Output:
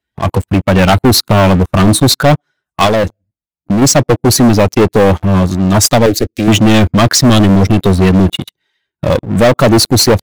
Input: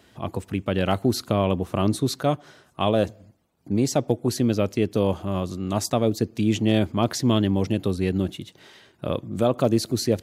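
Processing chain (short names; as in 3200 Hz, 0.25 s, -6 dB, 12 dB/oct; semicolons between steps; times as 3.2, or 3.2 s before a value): per-bin expansion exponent 1.5; sample leveller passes 5; 2.86–3.82 compressor, threshold -16 dBFS, peak gain reduction 4.5 dB; 6.06–6.48 fixed phaser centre 390 Hz, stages 4; gain +6.5 dB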